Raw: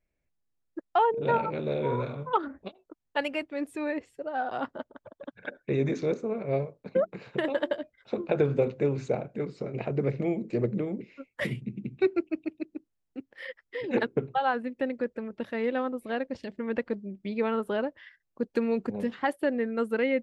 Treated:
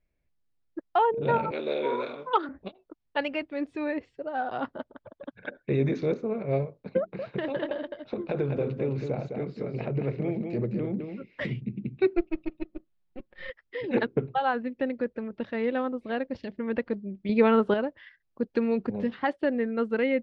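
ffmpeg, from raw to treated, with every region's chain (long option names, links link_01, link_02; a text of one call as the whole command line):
ffmpeg -i in.wav -filter_complex "[0:a]asettb=1/sr,asplit=3[link_01][link_02][link_03];[link_01]atrim=end=1.514[link_04];[link_02]atrim=start=1.51:end=2.49,asetpts=PTS-STARTPTS,afade=type=in:duration=0.004:curve=qsin,afade=type=out:start_time=0.976:duration=0.004:curve=qsin,highpass=frequency=270:width=0.5412,highpass=frequency=270:width=1.3066,highshelf=frequency=2500:gain=10[link_05];[link_03]atrim=start=2.486[link_06];[link_04][link_05]acrossfade=duration=0.004:curve1=hsin:curve2=qsin[link_07];[link_07][link_06]acrossfade=duration=0.004:curve1=qsin:curve2=hsin,asettb=1/sr,asplit=3[link_08][link_09][link_10];[link_08]atrim=end=6.984[link_11];[link_09]atrim=start=6.98:end=11.58,asetpts=PTS-STARTPTS,afade=type=in:duration=0.004:curve=qsin,afade=type=out:start_time=4.596:duration=0.004:curve=qsin,acompressor=threshold=-29dB:ratio=2:attack=3.2:release=140:knee=1:detection=peak,aecho=1:1:210:0.501,atrim=end_sample=202860[link_12];[link_10]atrim=start=11.576[link_13];[link_11][link_12]acrossfade=duration=0.004:curve1=hsin:curve2=qsin[link_14];[link_14][link_13]acrossfade=duration=0.004:curve1=qsin:curve2=hsin,asettb=1/sr,asplit=3[link_15][link_16][link_17];[link_15]atrim=end=12.174[link_18];[link_16]atrim=start=12.17:end=13.5,asetpts=PTS-STARTPTS,afade=type=in:duration=0.004:curve=qsin,afade=type=out:start_time=1.326:duration=0.004:curve=qsin,aeval=exprs='if(lt(val(0),0),0.447*val(0),val(0))':channel_layout=same,lowpass=frequency=4700:width=0.5412,lowpass=frequency=4700:width=1.3066,aecho=1:1:5.5:0.69,atrim=end_sample=58653[link_19];[link_17]atrim=start=13.496[link_20];[link_18][link_19]acrossfade=duration=0.004:curve1=hsin:curve2=qsin[link_21];[link_21][link_20]acrossfade=duration=0.004:curve1=qsin:curve2=hsin,asettb=1/sr,asplit=3[link_22][link_23][link_24];[link_22]atrim=end=17.294[link_25];[link_23]atrim=start=17.29:end=17.74,asetpts=PTS-STARTPTS,afade=type=in:duration=0.004:curve=qsin,afade=type=out:start_time=0.446:duration=0.004:curve=qsin,highpass=47,acontrast=70[link_26];[link_24]atrim=start=17.736[link_27];[link_25][link_26]acrossfade=duration=0.004:curve1=hsin:curve2=qsin[link_28];[link_28][link_27]acrossfade=duration=0.004:curve1=qsin:curve2=hsin,lowpass=frequency=5000:width=0.5412,lowpass=frequency=5000:width=1.3066,lowshelf=frequency=180:gain=5" out.wav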